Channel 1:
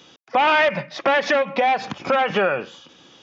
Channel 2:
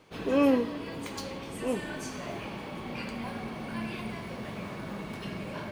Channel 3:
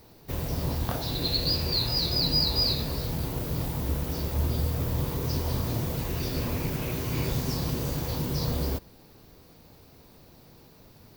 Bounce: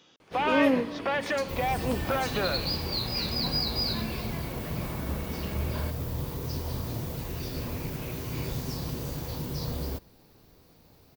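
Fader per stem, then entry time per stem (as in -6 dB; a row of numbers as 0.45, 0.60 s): -10.5, -0.5, -4.5 dB; 0.00, 0.20, 1.20 s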